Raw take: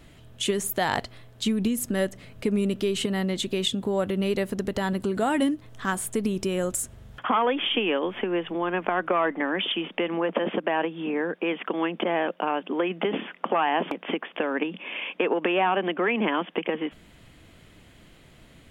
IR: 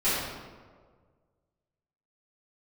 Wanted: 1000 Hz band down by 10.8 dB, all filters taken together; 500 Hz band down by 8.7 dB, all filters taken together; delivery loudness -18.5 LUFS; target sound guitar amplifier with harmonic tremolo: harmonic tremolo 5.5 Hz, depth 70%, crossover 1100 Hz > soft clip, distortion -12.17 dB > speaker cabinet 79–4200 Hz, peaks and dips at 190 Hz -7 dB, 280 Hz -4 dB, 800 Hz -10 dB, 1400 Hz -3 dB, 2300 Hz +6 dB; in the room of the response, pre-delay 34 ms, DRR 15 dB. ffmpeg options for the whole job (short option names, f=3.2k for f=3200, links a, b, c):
-filter_complex "[0:a]equalizer=f=500:t=o:g=-8.5,equalizer=f=1k:t=o:g=-5.5,asplit=2[a][b];[1:a]atrim=start_sample=2205,adelay=34[c];[b][c]afir=irnorm=-1:irlink=0,volume=-28.5dB[d];[a][d]amix=inputs=2:normalize=0,acrossover=split=1100[e][f];[e]aeval=exprs='val(0)*(1-0.7/2+0.7/2*cos(2*PI*5.5*n/s))':c=same[g];[f]aeval=exprs='val(0)*(1-0.7/2-0.7/2*cos(2*PI*5.5*n/s))':c=same[h];[g][h]amix=inputs=2:normalize=0,asoftclip=threshold=-28.5dB,highpass=79,equalizer=f=190:t=q:w=4:g=-7,equalizer=f=280:t=q:w=4:g=-4,equalizer=f=800:t=q:w=4:g=-10,equalizer=f=1.4k:t=q:w=4:g=-3,equalizer=f=2.3k:t=q:w=4:g=6,lowpass=f=4.2k:w=0.5412,lowpass=f=4.2k:w=1.3066,volume=18.5dB"